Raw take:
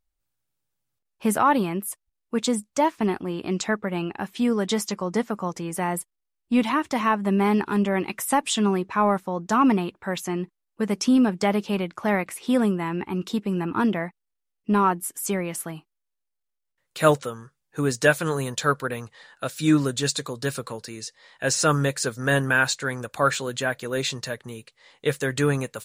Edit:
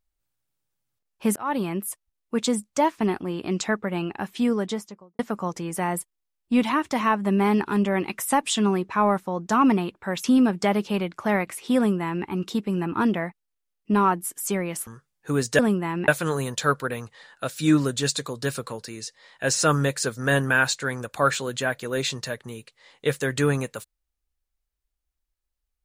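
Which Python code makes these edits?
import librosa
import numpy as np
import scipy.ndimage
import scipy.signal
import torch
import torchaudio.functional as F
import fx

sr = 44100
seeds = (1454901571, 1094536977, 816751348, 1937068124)

y = fx.studio_fade_out(x, sr, start_s=4.41, length_s=0.78)
y = fx.edit(y, sr, fx.fade_in_span(start_s=1.36, length_s=0.48, curve='qsin'),
    fx.cut(start_s=10.24, length_s=0.79),
    fx.duplicate(start_s=12.56, length_s=0.49, to_s=18.08),
    fx.cut(start_s=15.66, length_s=1.7), tone=tone)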